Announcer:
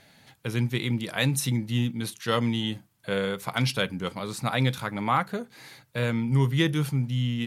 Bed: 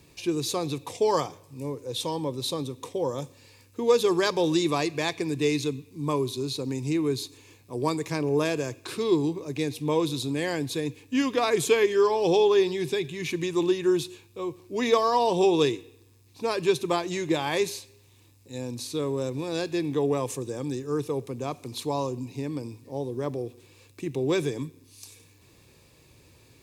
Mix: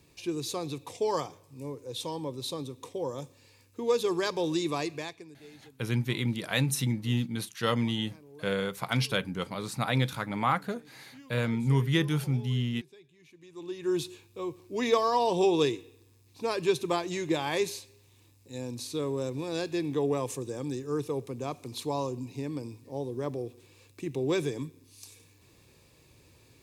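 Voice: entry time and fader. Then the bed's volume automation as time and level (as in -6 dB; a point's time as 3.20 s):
5.35 s, -2.5 dB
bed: 4.93 s -5.5 dB
5.43 s -27 dB
13.38 s -27 dB
13.98 s -3 dB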